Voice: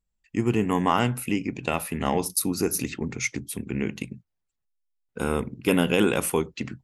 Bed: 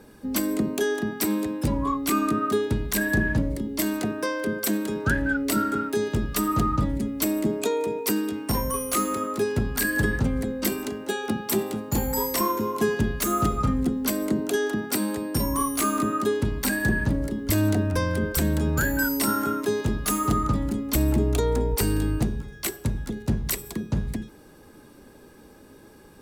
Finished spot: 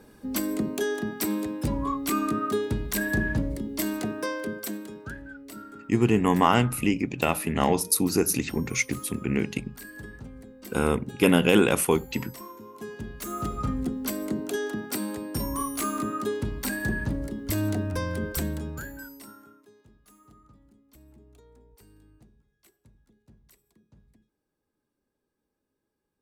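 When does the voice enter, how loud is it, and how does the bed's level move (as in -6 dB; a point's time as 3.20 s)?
5.55 s, +2.0 dB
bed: 4.33 s -3 dB
5.31 s -18.5 dB
12.63 s -18.5 dB
13.67 s -5 dB
18.39 s -5 dB
19.73 s -32.5 dB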